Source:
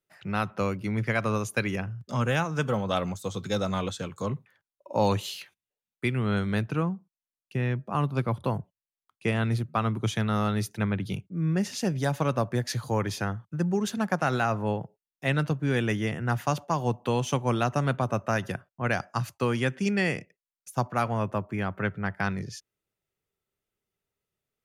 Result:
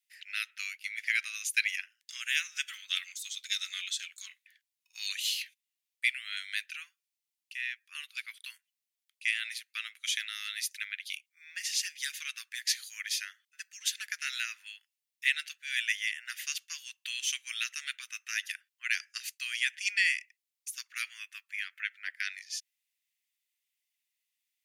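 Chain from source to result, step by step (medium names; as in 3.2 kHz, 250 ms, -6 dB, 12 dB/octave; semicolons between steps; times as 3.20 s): steep high-pass 1.9 kHz 48 dB/octave; trim +5.5 dB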